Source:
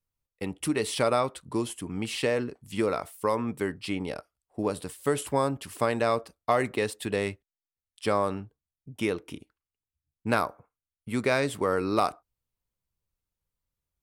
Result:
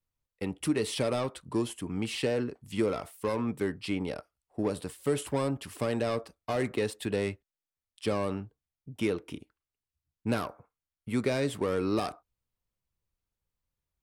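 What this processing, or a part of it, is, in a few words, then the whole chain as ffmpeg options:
one-band saturation: -filter_complex "[0:a]acrossover=split=470|3100[s0][s1][s2];[s1]asoftclip=type=tanh:threshold=0.0224[s3];[s0][s3][s2]amix=inputs=3:normalize=0,highshelf=f=5200:g=-5"

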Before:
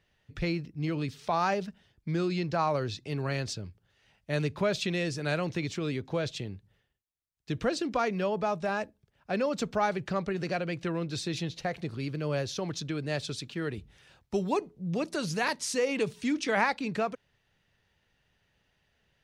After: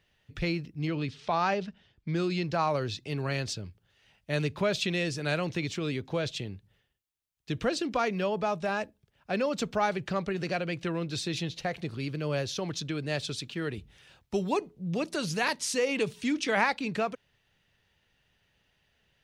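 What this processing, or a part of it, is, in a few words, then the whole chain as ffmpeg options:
presence and air boost: -filter_complex "[0:a]asettb=1/sr,asplit=3[s0][s1][s2];[s0]atrim=end=0.874[s3];[s1]atrim=start=0.87:end=2.16,asetpts=PTS-STARTPTS,afade=t=in:d=0.004:c=qsin,afade=t=out:st=1.286:d=0.004:c=qsin,lowpass=5200[s4];[s2]atrim=start=2.156[s5];[s3][s4]acrossfade=d=0.004:c1=hsin:c2=qsin[s6];[s6][s5]acrossfade=d=0.004:c1=qsin:c2=hsin,equalizer=f=3000:t=o:w=0.89:g=3.5,highshelf=f=9400:g=3.5"

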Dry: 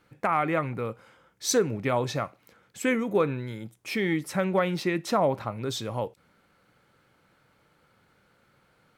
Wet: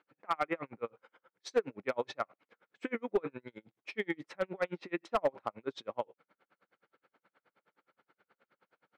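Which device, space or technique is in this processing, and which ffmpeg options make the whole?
helicopter radio: -af "highpass=310,lowpass=2800,aeval=exprs='val(0)*pow(10,-38*(0.5-0.5*cos(2*PI*9.5*n/s))/20)':c=same,asoftclip=type=hard:threshold=0.0891"

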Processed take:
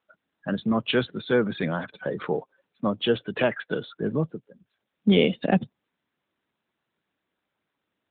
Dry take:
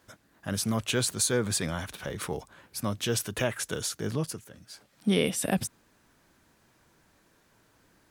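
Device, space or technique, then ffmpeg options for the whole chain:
mobile call with aggressive noise cancelling: -filter_complex "[0:a]asplit=3[s0][s1][s2];[s0]afade=t=out:st=1.69:d=0.02[s3];[s1]adynamicequalizer=threshold=0.00355:dfrequency=480:dqfactor=2.1:tfrequency=480:tqfactor=2.1:attack=5:release=100:ratio=0.375:range=1.5:mode=boostabove:tftype=bell,afade=t=in:st=1.69:d=0.02,afade=t=out:st=3.11:d=0.02[s4];[s2]afade=t=in:st=3.11:d=0.02[s5];[s3][s4][s5]amix=inputs=3:normalize=0,highpass=f=150:w=0.5412,highpass=f=150:w=1.3066,afftdn=nr=27:nf=-39,volume=2.11" -ar 8000 -c:a libopencore_amrnb -b:a 12200

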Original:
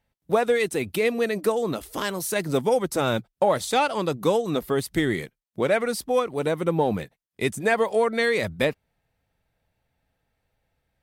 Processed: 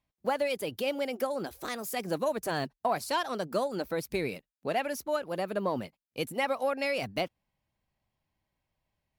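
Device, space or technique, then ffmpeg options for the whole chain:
nightcore: -af "asetrate=52920,aresample=44100,volume=0.398"

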